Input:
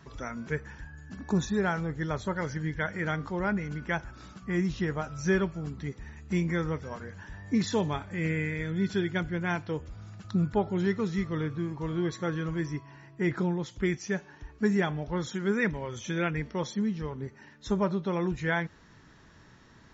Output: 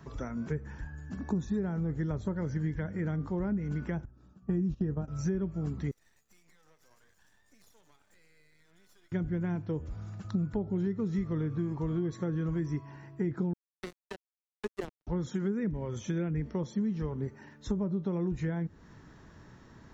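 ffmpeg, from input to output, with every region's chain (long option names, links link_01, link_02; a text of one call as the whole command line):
ffmpeg -i in.wav -filter_complex "[0:a]asettb=1/sr,asplit=3[link_01][link_02][link_03];[link_01]atrim=end=4.054[link_04];[link_02]atrim=start=4.05:end=5.08,asetpts=PTS-STARTPTS,afade=type=in:duration=0.004:curve=qsin,afade=type=out:start_time=1.026:duration=0.004:curve=qsin,agate=range=-17dB:threshold=-36dB:ratio=16:release=100:detection=peak,asuperstop=centerf=2100:order=12:qfactor=6.3,tiltshelf=frequency=710:gain=5[link_05];[link_03]atrim=start=5.076[link_06];[link_04][link_05]acrossfade=duration=0.004:curve1=hsin:curve2=qsin[link_07];[link_07][link_06]acrossfade=duration=0.004:curve1=qsin:curve2=hsin,asettb=1/sr,asplit=3[link_08][link_09][link_10];[link_08]atrim=end=5.914[link_11];[link_09]atrim=start=5.91:end=9.12,asetpts=PTS-STARTPTS,afade=type=in:duration=0.004:curve=qsin,afade=type=out:start_time=3.206:duration=0.004:curve=qsin,aderivative,acompressor=threshold=-56dB:ratio=8:attack=3.2:release=140:knee=1:detection=peak,aeval=exprs='max(val(0),0)':channel_layout=same[link_12];[link_10]atrim=start=9.116[link_13];[link_11][link_12]acrossfade=duration=0.004:curve1=hsin:curve2=qsin[link_14];[link_14][link_13]acrossfade=duration=0.004:curve1=qsin:curve2=hsin,asettb=1/sr,asplit=3[link_15][link_16][link_17];[link_15]atrim=end=13.534[link_18];[link_16]atrim=start=13.53:end=15.07,asetpts=PTS-STARTPTS,afade=type=in:duration=0.004:curve=qsin,afade=type=out:start_time=1.536:duration=0.004:curve=qsin,highpass=frequency=380:width=0.5412,highpass=frequency=380:width=1.3066,acrusher=bits=3:mix=0:aa=0.5[link_19];[link_17]atrim=start=15.066[link_20];[link_18][link_19]acrossfade=duration=0.004:curve1=hsin:curve2=qsin[link_21];[link_21][link_20]acrossfade=duration=0.004:curve1=qsin:curve2=hsin,acrossover=split=400[link_22][link_23];[link_23]acompressor=threshold=-41dB:ratio=10[link_24];[link_22][link_24]amix=inputs=2:normalize=0,equalizer=frequency=3500:width=0.43:gain=-8,acompressor=threshold=-31dB:ratio=6,volume=3.5dB" out.wav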